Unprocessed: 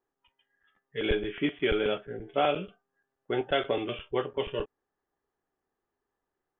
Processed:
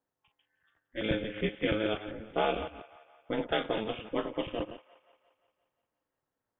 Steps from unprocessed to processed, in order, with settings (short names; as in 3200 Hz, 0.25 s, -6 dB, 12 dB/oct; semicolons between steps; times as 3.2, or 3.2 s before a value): reverse delay 0.141 s, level -11 dB; ring modulator 110 Hz; band-limited delay 0.175 s, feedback 57%, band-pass 1400 Hz, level -16 dB